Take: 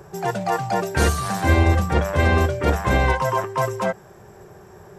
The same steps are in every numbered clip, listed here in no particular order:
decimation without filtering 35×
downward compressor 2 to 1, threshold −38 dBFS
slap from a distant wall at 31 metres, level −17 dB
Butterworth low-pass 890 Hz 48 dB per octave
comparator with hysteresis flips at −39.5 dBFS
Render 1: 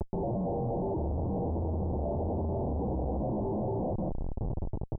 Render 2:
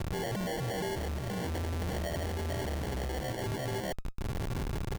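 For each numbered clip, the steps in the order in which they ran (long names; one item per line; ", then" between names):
decimation without filtering, then slap from a distant wall, then comparator with hysteresis, then Butterworth low-pass, then downward compressor
downward compressor, then slap from a distant wall, then comparator with hysteresis, then Butterworth low-pass, then decimation without filtering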